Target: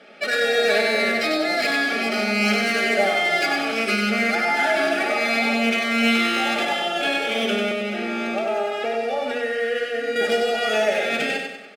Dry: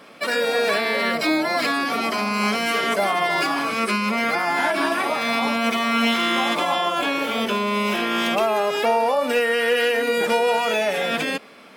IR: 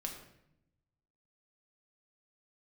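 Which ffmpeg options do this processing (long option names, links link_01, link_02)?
-filter_complex "[0:a]highpass=260,equalizer=frequency=1100:width=1.7:gain=-3.5,bandreject=frequency=60:width_type=h:width=6,bandreject=frequency=120:width_type=h:width=6,bandreject=frequency=180:width_type=h:width=6,bandreject=frequency=240:width_type=h:width=6,bandreject=frequency=300:width_type=h:width=6,bandreject=frequency=360:width_type=h:width=6,bandreject=frequency=420:width_type=h:width=6,bandreject=frequency=480:width_type=h:width=6,aecho=1:1:4.8:0.47,asettb=1/sr,asplit=3[link_01][link_02][link_03];[link_01]atrim=end=7.714[link_04];[link_02]atrim=start=7.71:end=10.16,asetpts=PTS-STARTPTS,afade=type=in:duration=0.004:curve=qsin,afade=type=out:start_time=2.446:duration=0.004:curve=qsin,acrossover=split=1200|4100[link_05][link_06][link_07];[link_05]acompressor=threshold=-24dB:ratio=4[link_08];[link_06]acompressor=threshold=-34dB:ratio=4[link_09];[link_07]acompressor=threshold=-46dB:ratio=4[link_10];[link_08][link_09][link_10]amix=inputs=3:normalize=0[link_11];[link_03]atrim=start=10.156[link_12];[link_04][link_11]acrossfade=duration=0.004:curve1=hsin:curve2=qsin[link_13];[link_13][link_12]acrossfade=duration=0.004:curve1=qsin:curve2=hsin,acrusher=bits=6:mode=log:mix=0:aa=0.000001,adynamicsmooth=sensitivity=3.5:basefreq=4800,asuperstop=centerf=1000:order=12:qfactor=4,aecho=1:1:96|192|288|384|480|576:0.596|0.274|0.126|0.058|0.0267|0.0123"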